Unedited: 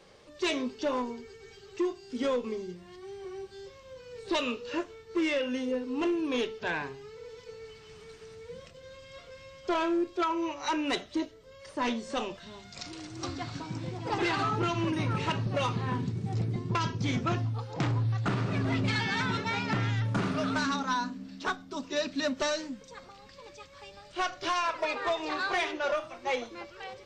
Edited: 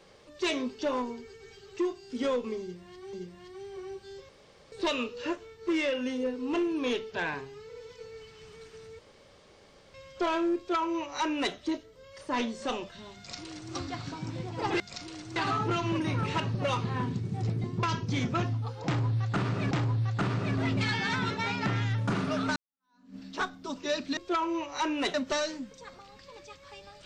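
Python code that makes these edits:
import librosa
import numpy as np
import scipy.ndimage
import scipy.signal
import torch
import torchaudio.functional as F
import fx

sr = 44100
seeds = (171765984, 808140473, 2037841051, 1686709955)

y = fx.edit(x, sr, fx.repeat(start_s=2.61, length_s=0.52, count=2),
    fx.room_tone_fill(start_s=3.77, length_s=0.43),
    fx.room_tone_fill(start_s=8.47, length_s=0.95),
    fx.duplicate(start_s=10.05, length_s=0.97, to_s=22.24),
    fx.duplicate(start_s=12.65, length_s=0.56, to_s=14.28),
    fx.repeat(start_s=17.78, length_s=0.85, count=2),
    fx.fade_in_span(start_s=20.63, length_s=0.6, curve='exp'), tone=tone)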